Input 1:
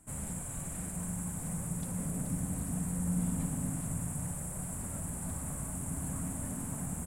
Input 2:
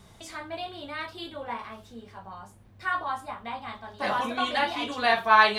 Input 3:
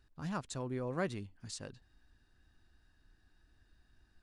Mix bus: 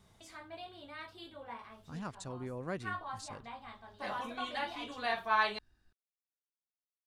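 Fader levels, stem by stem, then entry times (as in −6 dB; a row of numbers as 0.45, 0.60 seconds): muted, −11.5 dB, −3.5 dB; muted, 0.00 s, 1.70 s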